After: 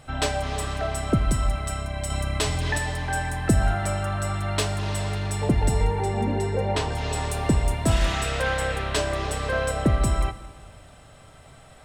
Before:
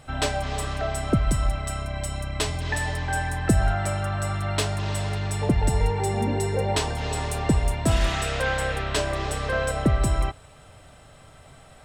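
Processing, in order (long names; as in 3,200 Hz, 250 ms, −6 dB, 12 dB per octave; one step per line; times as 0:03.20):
0:05.84–0:06.92: low-pass filter 3,400 Hz 6 dB per octave
dense smooth reverb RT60 1.7 s, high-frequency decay 0.9×, DRR 13.5 dB
0:02.10–0:02.78: envelope flattener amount 50%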